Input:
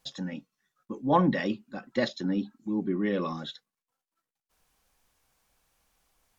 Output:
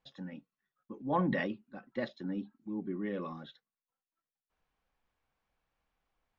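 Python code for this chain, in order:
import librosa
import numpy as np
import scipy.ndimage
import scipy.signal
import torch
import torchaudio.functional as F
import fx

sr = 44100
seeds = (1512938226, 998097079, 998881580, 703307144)

y = scipy.signal.sosfilt(scipy.signal.butter(2, 2800.0, 'lowpass', fs=sr, output='sos'), x)
y = fx.sustainer(y, sr, db_per_s=26.0, at=(1.0, 1.47), fade=0.02)
y = F.gain(torch.from_numpy(y), -8.5).numpy()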